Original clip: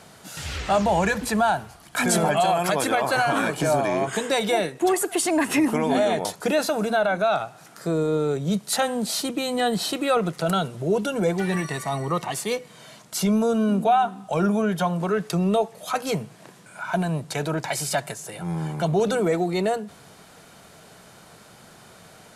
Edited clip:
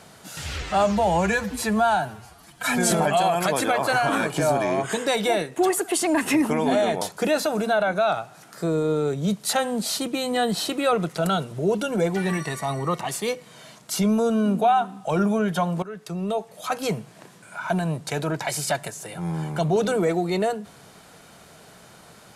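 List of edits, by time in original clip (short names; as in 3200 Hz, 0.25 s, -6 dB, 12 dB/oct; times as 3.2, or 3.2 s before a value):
0.62–2.15 stretch 1.5×
15.06–16.08 fade in, from -16 dB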